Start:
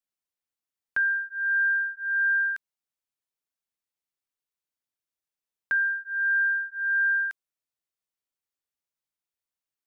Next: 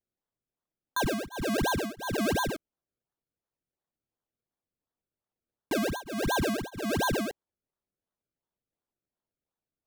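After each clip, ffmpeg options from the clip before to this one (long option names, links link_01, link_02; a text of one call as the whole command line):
ffmpeg -i in.wav -af "acrusher=samples=33:mix=1:aa=0.000001:lfo=1:lforange=33:lforate=2.8,volume=-4dB" out.wav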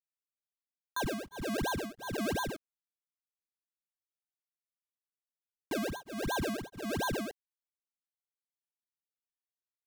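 ffmpeg -i in.wav -af "aeval=exprs='sgn(val(0))*max(abs(val(0))-0.00282,0)':channel_layout=same,volume=-5dB" out.wav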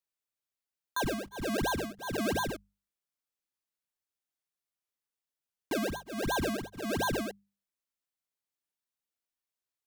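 ffmpeg -i in.wav -af "bandreject=frequency=50:width_type=h:width=6,bandreject=frequency=100:width_type=h:width=6,bandreject=frequency=150:width_type=h:width=6,bandreject=frequency=200:width_type=h:width=6,volume=2.5dB" out.wav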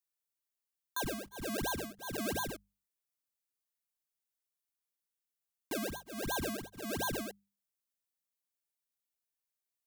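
ffmpeg -i in.wav -af "highshelf=frequency=6300:gain=9.5,volume=-6dB" out.wav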